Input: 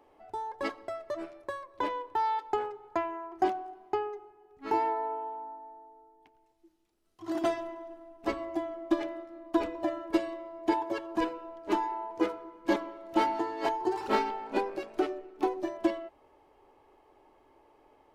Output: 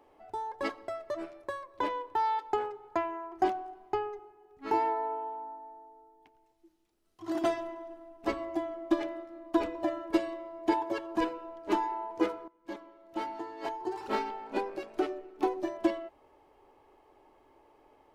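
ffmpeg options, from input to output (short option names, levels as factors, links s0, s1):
-filter_complex "[0:a]asettb=1/sr,asplit=3[s0][s1][s2];[s0]atrim=end=3.204[s3];[s1]atrim=start=3.2:end=4.19,asetpts=PTS-STARTPTS,afade=t=in:d=0.004:c=qsin,afade=t=out:st=0.986:d=0.004:c=qsin,asubboost=boost=6.5:cutoff=140[s4];[s2]atrim=start=4.186[s5];[s3][s4]acrossfade=d=0.004:c1=hsin:c2=qsin[s6];[s6][s5]acrossfade=d=0.004:c1=qsin:c2=hsin,asplit=2[s7][s8];[s7]atrim=end=12.48,asetpts=PTS-STARTPTS,afade=t=out:st=12.476:d=0.004:c=hsin:silence=0.133352[s9];[s8]atrim=start=12.48,asetpts=PTS-STARTPTS,afade=t=in:d=3.02:silence=0.133352[s10];[s9][s10]concat=n=2:v=0:a=1"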